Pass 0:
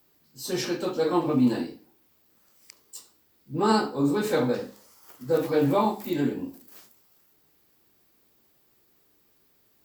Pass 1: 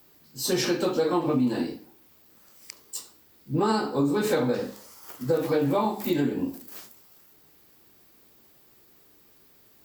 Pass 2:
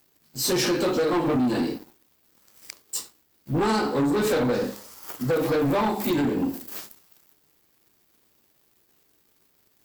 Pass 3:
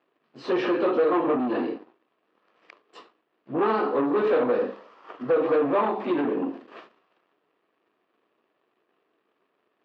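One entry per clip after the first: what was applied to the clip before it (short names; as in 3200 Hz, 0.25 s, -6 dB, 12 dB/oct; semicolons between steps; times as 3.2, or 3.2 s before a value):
compressor 6:1, threshold -28 dBFS, peak gain reduction 11 dB; gain +7 dB
sample leveller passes 3; gain -5 dB
speaker cabinet 480–2200 Hz, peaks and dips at 580 Hz -3 dB, 850 Hz -8 dB, 1500 Hz -8 dB, 2100 Hz -10 dB; gain +7 dB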